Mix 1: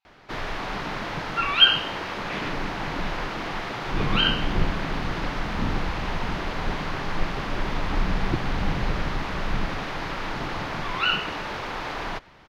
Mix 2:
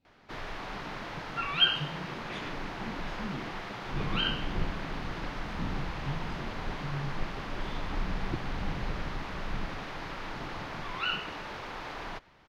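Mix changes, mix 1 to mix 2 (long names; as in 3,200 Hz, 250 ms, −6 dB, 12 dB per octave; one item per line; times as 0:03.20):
speech: remove linear-phase brick-wall band-pass 740–9,800 Hz
background −8.5 dB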